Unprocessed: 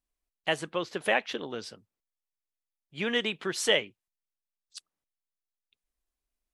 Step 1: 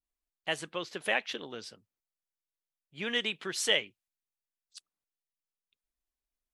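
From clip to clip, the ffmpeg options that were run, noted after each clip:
-af "adynamicequalizer=threshold=0.0112:dfrequency=1600:dqfactor=0.7:tfrequency=1600:tqfactor=0.7:attack=5:release=100:ratio=0.375:range=3:mode=boostabove:tftype=highshelf,volume=-6dB"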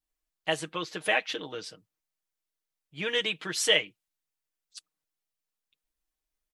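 -af "aecho=1:1:6.4:0.7,volume=2dB"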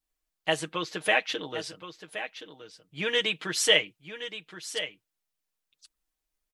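-af "aecho=1:1:1072:0.266,volume=2dB"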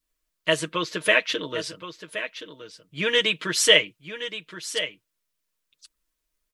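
-af "asuperstop=centerf=790:order=8:qfactor=5,volume=5dB"

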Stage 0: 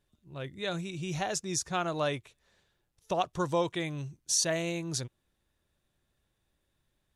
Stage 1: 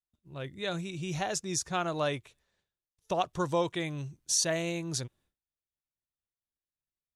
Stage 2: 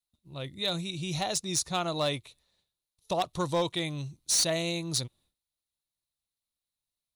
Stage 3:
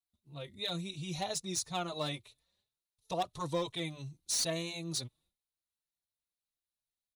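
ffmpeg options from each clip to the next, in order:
-af "agate=range=-33dB:threshold=-60dB:ratio=3:detection=peak"
-af "equalizer=f=400:t=o:w=0.33:g=-4,equalizer=f=1.6k:t=o:w=0.33:g=-9,equalizer=f=4k:t=o:w=0.33:g=12,equalizer=f=10k:t=o:w=0.33:g=9,volume=22.5dB,asoftclip=hard,volume=-22.5dB,volume=1.5dB"
-filter_complex "[0:a]asplit=2[a][b];[b]adelay=4,afreqshift=2.9[c];[a][c]amix=inputs=2:normalize=1,volume=-3.5dB"

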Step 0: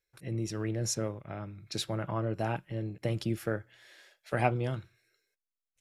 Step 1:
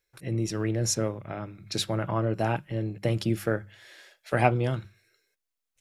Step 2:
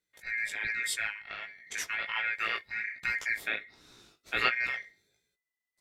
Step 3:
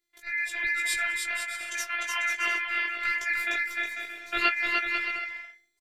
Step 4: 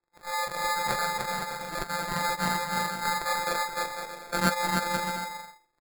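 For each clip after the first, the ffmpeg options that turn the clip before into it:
-af "bandreject=f=50:t=h:w=6,bandreject=f=100:t=h:w=6,bandreject=f=150:t=h:w=6,bandreject=f=200:t=h:w=6,volume=5.5dB"
-af "aeval=exprs='val(0)*sin(2*PI*2000*n/s)':c=same,flanger=delay=16:depth=3.9:speed=1.3"
-af "afftfilt=real='hypot(re,im)*cos(PI*b)':imag='0':win_size=512:overlap=0.75,aecho=1:1:300|495|621.8|704.1|757.7:0.631|0.398|0.251|0.158|0.1,volume=6dB"
-af "acrusher=samples=15:mix=1:aa=0.000001"

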